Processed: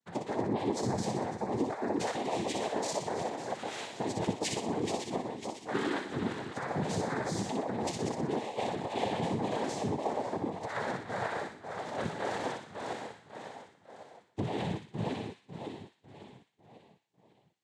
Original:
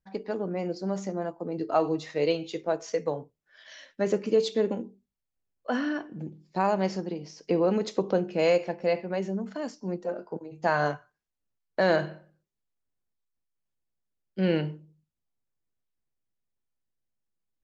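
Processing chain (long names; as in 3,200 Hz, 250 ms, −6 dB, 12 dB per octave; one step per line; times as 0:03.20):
feedback delay that plays each chunk backwards 275 ms, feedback 65%, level −11.5 dB
low-shelf EQ 170 Hz −4 dB
compressor whose output falls as the input rises −29 dBFS, ratio −0.5
brickwall limiter −26 dBFS, peak gain reduction 9.5 dB
flanger 1.7 Hz, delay 7.6 ms, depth 2.8 ms, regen +56%
cochlear-implant simulation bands 6
on a send: delay with a high-pass on its return 61 ms, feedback 47%, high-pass 1,800 Hz, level −4 dB
on the sum: level +6 dB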